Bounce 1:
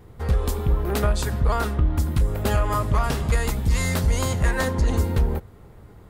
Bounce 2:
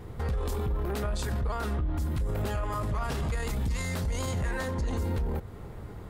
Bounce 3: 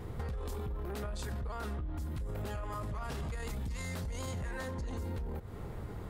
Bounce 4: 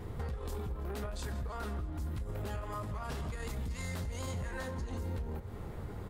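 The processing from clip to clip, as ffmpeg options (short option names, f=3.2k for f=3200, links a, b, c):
-af "acompressor=threshold=-29dB:ratio=2,highshelf=f=10k:g=-5,alimiter=level_in=4.5dB:limit=-24dB:level=0:latency=1:release=10,volume=-4.5dB,volume=4.5dB"
-af "acompressor=threshold=-35dB:ratio=10"
-af "aecho=1:1:162|324|486|648|810:0.158|0.0888|0.0497|0.0278|0.0156,flanger=delay=9.7:depth=3.4:regen=-63:speed=1.8:shape=sinusoidal,volume=4dB"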